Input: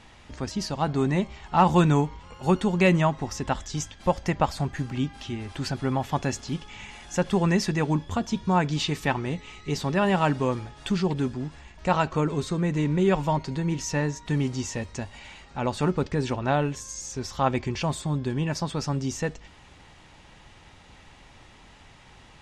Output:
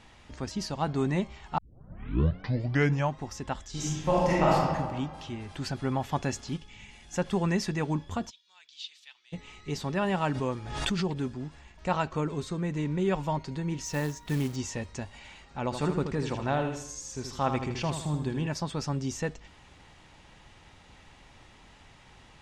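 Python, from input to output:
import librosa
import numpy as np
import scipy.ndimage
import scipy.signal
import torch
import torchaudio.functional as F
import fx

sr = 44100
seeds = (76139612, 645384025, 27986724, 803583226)

y = fx.reverb_throw(x, sr, start_s=3.7, length_s=0.83, rt60_s=1.6, drr_db=-8.0)
y = fx.curve_eq(y, sr, hz=(160.0, 1300.0, 2200.0), db=(0, -10, -3), at=(6.57, 7.13))
y = fx.ladder_bandpass(y, sr, hz=4200.0, resonance_pct=45, at=(8.29, 9.32), fade=0.02)
y = fx.pre_swell(y, sr, db_per_s=46.0, at=(10.31, 11.2))
y = fx.quant_float(y, sr, bits=2, at=(13.85, 14.56))
y = fx.echo_feedback(y, sr, ms=79, feedback_pct=44, wet_db=-7.5, at=(15.71, 18.47), fade=0.02)
y = fx.edit(y, sr, fx.tape_start(start_s=1.58, length_s=1.6), tone=tone)
y = fx.rider(y, sr, range_db=3, speed_s=2.0)
y = F.gain(torch.from_numpy(y), -6.0).numpy()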